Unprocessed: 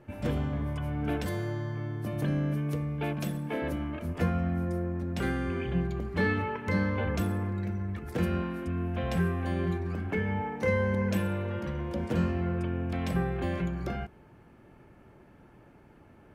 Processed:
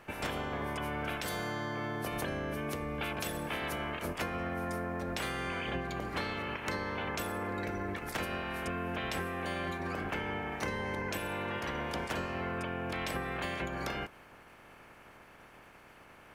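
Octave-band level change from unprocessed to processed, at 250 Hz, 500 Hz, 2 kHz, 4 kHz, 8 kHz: −8.0, −4.0, +1.0, +5.5, +5.5 decibels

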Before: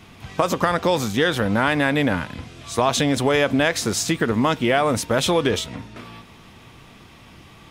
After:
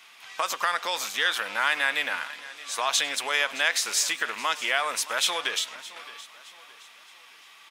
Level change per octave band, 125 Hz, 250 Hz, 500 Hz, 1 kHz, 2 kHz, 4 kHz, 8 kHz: below −35 dB, −27.0 dB, −15.5 dB, −5.5 dB, −1.0 dB, 0.0 dB, 0.0 dB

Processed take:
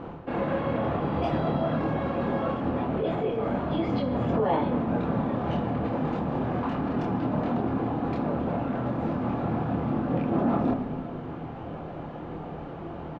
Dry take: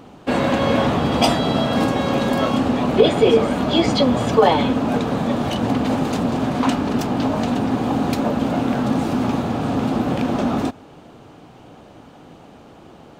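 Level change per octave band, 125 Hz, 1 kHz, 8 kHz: −5.0 dB, −8.0 dB, below −30 dB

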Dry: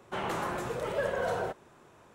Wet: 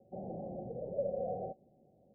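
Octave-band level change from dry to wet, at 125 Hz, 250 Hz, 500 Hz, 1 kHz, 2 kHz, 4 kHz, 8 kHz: −5.0 dB, −5.0 dB, −5.0 dB, −11.5 dB, below −40 dB, below −40 dB, below −30 dB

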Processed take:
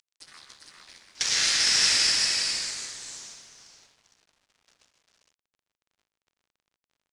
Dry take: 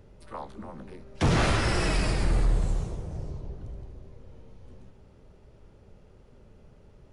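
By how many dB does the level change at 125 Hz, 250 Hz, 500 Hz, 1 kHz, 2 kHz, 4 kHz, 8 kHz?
−26.0, −18.5, −15.0, −8.5, +4.0, +14.5, +16.0 decibels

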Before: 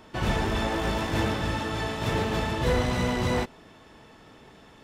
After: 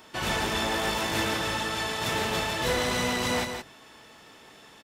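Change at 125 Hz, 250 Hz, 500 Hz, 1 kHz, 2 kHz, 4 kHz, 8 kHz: −8.0, −4.0, −1.5, +0.5, +3.0, +5.5, +8.0 decibels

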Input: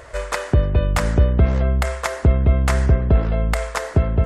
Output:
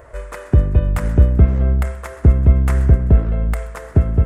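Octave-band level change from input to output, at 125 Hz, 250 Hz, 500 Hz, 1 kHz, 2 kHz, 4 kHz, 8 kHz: +3.5 dB, +2.0 dB, −3.0 dB, −6.0 dB, −6.5 dB, below −10 dB, −8.5 dB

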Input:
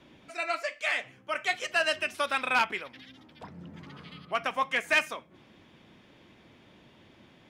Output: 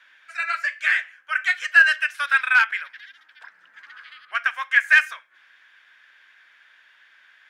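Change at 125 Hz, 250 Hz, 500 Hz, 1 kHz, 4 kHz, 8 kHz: below −35 dB, below −25 dB, below −10 dB, +2.0 dB, +2.5 dB, can't be measured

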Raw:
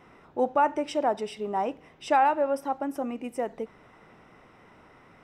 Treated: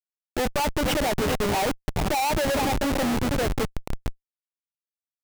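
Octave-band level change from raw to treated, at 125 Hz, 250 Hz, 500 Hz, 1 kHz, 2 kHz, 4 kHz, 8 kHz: can't be measured, +6.5 dB, +1.5 dB, −1.5 dB, +7.5 dB, +14.0 dB, +16.5 dB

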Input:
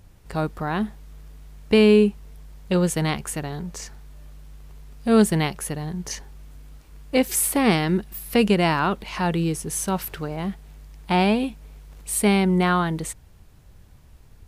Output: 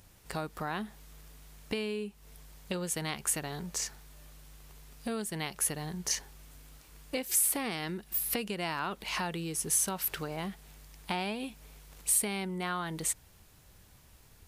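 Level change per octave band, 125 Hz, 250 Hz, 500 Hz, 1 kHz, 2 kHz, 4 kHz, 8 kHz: −15.5, −17.0, −16.5, −12.0, −10.0, −8.0, −1.5 decibels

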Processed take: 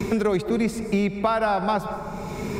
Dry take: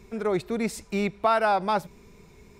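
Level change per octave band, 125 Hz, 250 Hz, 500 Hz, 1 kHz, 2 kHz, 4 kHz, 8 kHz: +7.5, +6.5, +3.0, +0.5, +1.0, +1.5, +1.5 decibels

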